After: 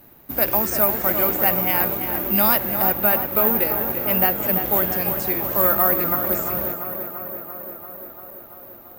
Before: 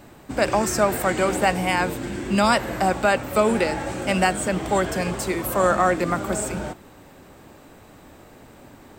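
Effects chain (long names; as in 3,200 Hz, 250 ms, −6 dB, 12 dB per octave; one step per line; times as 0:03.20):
0:02.93–0:04.43: high-shelf EQ 5,400 Hz −10 dB
in parallel at −7.5 dB: bit-depth reduction 6 bits, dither none
on the sum: tape delay 341 ms, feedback 79%, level −7 dB, low-pass 3,000 Hz
bad sample-rate conversion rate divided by 3×, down filtered, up zero stuff
level −7 dB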